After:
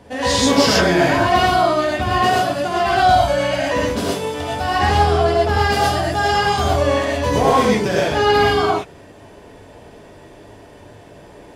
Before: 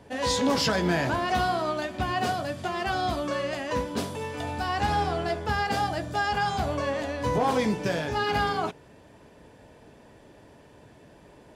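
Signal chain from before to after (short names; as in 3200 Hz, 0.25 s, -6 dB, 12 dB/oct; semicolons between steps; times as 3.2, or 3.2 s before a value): 2.97–3.6 comb 1.3 ms, depth 69%; 5.57–7.49 high shelf 6500 Hz +4.5 dB; non-linear reverb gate 0.15 s rising, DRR -4.5 dB; gain +5 dB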